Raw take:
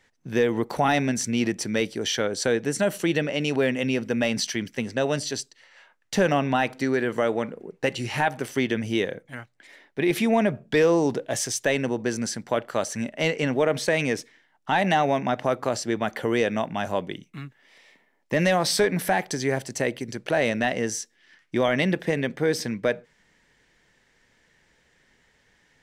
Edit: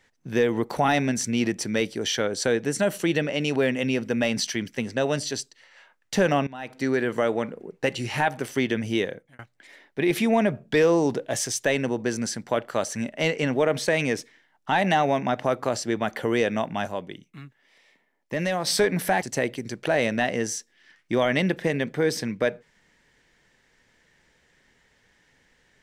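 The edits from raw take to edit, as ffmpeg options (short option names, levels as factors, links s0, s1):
-filter_complex "[0:a]asplit=6[s0][s1][s2][s3][s4][s5];[s0]atrim=end=6.47,asetpts=PTS-STARTPTS,afade=t=out:st=6.466:d=0.004:c=hsin:silence=0.112202[s6];[s1]atrim=start=6.47:end=9.39,asetpts=PTS-STARTPTS,afade=t=in:d=0.39:c=qua:silence=0.112202,afade=t=out:st=2.45:d=0.47:c=qsin[s7];[s2]atrim=start=9.39:end=16.872,asetpts=PTS-STARTPTS,afade=t=in:d=0.004:c=hsin[s8];[s3]atrim=start=16.868:end=18.672,asetpts=PTS-STARTPTS,volume=0.562[s9];[s4]atrim=start=18.668:end=19.222[s10];[s5]atrim=start=19.648[s11];[s6][s7][s8]concat=n=3:v=0:a=1[s12];[s12][s9]acrossfade=d=0.004:c1=hsin:c2=hsin[s13];[s13][s10]acrossfade=d=0.004:c1=hsin:c2=hsin[s14];[s14][s11]acrossfade=d=0.004:c1=hsin:c2=hsin"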